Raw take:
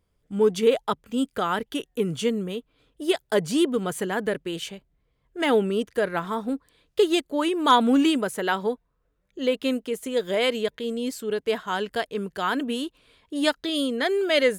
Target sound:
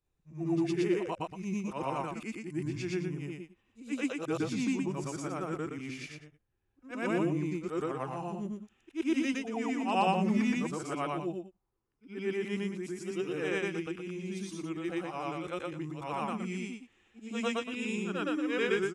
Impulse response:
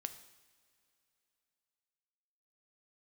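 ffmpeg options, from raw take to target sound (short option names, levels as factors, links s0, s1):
-af "afftfilt=real='re':imag='-im':win_size=8192:overlap=0.75,aresample=32000,aresample=44100,asetrate=33957,aresample=44100,volume=0.596"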